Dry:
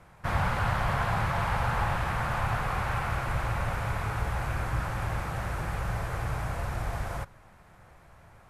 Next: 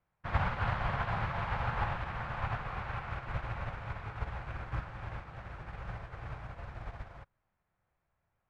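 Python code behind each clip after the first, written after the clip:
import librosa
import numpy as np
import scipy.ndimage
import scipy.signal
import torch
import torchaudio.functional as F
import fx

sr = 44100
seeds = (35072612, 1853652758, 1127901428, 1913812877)

y = scipy.signal.sosfilt(scipy.signal.cheby1(2, 1.0, 3300.0, 'lowpass', fs=sr, output='sos'), x)
y = fx.upward_expand(y, sr, threshold_db=-42.0, expansion=2.5)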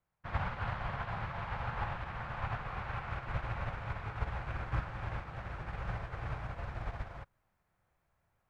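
y = fx.rider(x, sr, range_db=5, speed_s=2.0)
y = y * 10.0 ** (-1.5 / 20.0)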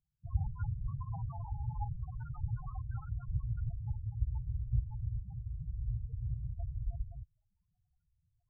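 y = fx.spec_topn(x, sr, count=4)
y = y * 10.0 ** (4.5 / 20.0)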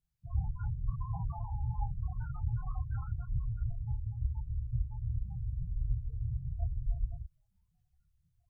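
y = fx.chorus_voices(x, sr, voices=6, hz=1.1, base_ms=27, depth_ms=3.0, mix_pct=45)
y = fx.rider(y, sr, range_db=10, speed_s=0.5)
y = y * 10.0 ** (4.5 / 20.0)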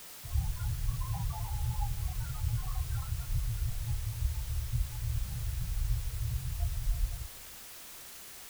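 y = fx.dmg_noise_colour(x, sr, seeds[0], colour='white', level_db=-49.0)
y = fx.rev_freeverb(y, sr, rt60_s=0.99, hf_ratio=0.95, predelay_ms=85, drr_db=16.0)
y = y * 10.0 ** (1.0 / 20.0)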